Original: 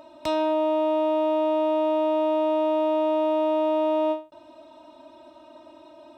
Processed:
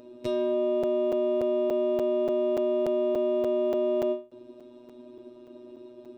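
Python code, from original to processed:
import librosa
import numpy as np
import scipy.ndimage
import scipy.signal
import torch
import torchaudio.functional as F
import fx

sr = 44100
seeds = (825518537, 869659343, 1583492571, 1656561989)

y = fx.robotise(x, sr, hz=122.0)
y = fx.low_shelf_res(y, sr, hz=570.0, db=11.0, q=3.0)
y = fx.buffer_crackle(y, sr, first_s=0.83, period_s=0.29, block=256, kind='zero')
y = y * librosa.db_to_amplitude(-5.5)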